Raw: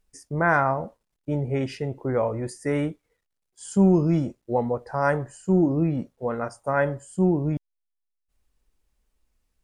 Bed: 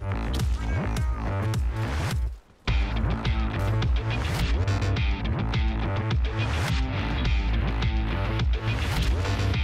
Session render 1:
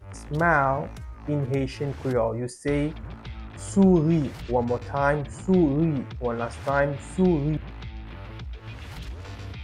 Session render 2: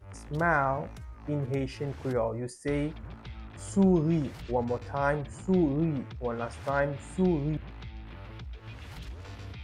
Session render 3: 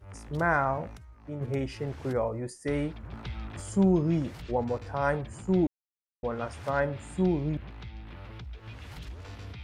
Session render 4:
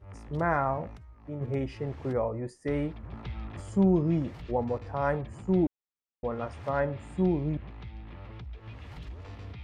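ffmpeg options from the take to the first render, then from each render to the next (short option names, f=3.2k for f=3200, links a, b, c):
-filter_complex "[1:a]volume=-12.5dB[a];[0:a][a]amix=inputs=2:normalize=0"
-af "volume=-5dB"
-filter_complex "[0:a]asplit=3[a][b][c];[a]afade=t=out:st=3.12:d=0.02[d];[b]acontrast=33,afade=t=in:st=3.12:d=0.02,afade=t=out:st=3.6:d=0.02[e];[c]afade=t=in:st=3.6:d=0.02[f];[d][e][f]amix=inputs=3:normalize=0,asplit=5[g][h][i][j][k];[g]atrim=end=0.972[l];[h]atrim=start=0.968:end=1.412,asetpts=PTS-STARTPTS,volume=-6.5dB[m];[i]atrim=start=1.408:end=5.67,asetpts=PTS-STARTPTS,afade=t=out:st=4.258:d=0.004:c=hsin[n];[j]atrim=start=5.67:end=6.23,asetpts=PTS-STARTPTS,volume=0[o];[k]atrim=start=6.23,asetpts=PTS-STARTPTS,afade=t=in:d=0.004:c=hsin[p];[l][m]acrossfade=d=0.004:c1=hsin:c2=hsin[q];[n][o][p]concat=n=3:v=0:a=1[r];[q][r]acrossfade=d=0.004:c1=hsin:c2=hsin"
-af "lowpass=f=2.3k:p=1,bandreject=f=1.5k:w=12"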